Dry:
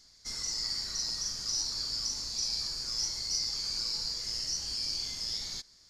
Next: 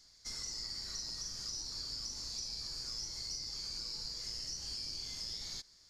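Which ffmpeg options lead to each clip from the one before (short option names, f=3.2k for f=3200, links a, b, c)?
-filter_complex "[0:a]equalizer=f=220:t=o:w=0.77:g=-2,acrossover=split=480[a][b];[b]acompressor=threshold=-36dB:ratio=6[c];[a][c]amix=inputs=2:normalize=0,volume=-3dB"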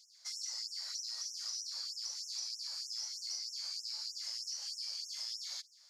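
-af "afftfilt=real='re*gte(b*sr/1024,500*pow(5400/500,0.5+0.5*sin(2*PI*3.2*pts/sr)))':imag='im*gte(b*sr/1024,500*pow(5400/500,0.5+0.5*sin(2*PI*3.2*pts/sr)))':win_size=1024:overlap=0.75,volume=1dB"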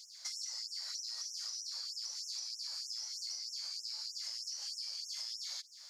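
-af "acompressor=threshold=-49dB:ratio=6,volume=9dB"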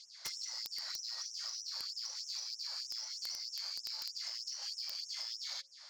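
-af "bandreject=f=60:t=h:w=6,bandreject=f=120:t=h:w=6,bandreject=f=180:t=h:w=6,bandreject=f=240:t=h:w=6,bandreject=f=300:t=h:w=6,bandreject=f=360:t=h:w=6,bandreject=f=420:t=h:w=6,bandreject=f=480:t=h:w=6,bandreject=f=540:t=h:w=6,adynamicsmooth=sensitivity=4:basefreq=4k,aeval=exprs='(mod(59.6*val(0)+1,2)-1)/59.6':c=same,volume=6dB"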